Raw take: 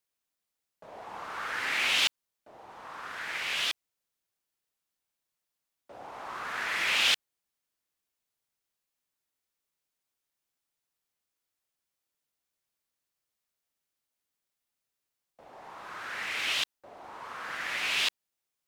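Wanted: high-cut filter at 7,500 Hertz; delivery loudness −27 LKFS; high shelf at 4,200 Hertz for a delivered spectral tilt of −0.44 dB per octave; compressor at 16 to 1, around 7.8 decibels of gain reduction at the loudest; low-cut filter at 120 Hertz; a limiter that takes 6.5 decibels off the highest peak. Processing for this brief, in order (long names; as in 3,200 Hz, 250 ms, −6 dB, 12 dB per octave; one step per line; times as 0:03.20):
high-pass filter 120 Hz
low-pass filter 7,500 Hz
high-shelf EQ 4,200 Hz −4 dB
downward compressor 16 to 1, threshold −30 dBFS
level +11 dB
brickwall limiter −17 dBFS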